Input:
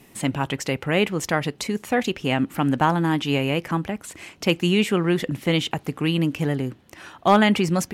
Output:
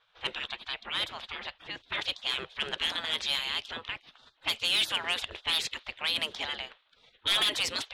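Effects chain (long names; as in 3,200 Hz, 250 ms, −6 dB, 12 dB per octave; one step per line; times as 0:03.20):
gate on every frequency bin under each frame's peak −20 dB weak
parametric band 3,600 Hz +15 dB 0.86 octaves
hard clipping −20.5 dBFS, distortion −11 dB
low-pass that shuts in the quiet parts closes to 1,400 Hz, open at −24.5 dBFS
high-shelf EQ 4,600 Hz −7 dB, from 0:00.74 −12 dB, from 0:01.88 −2 dB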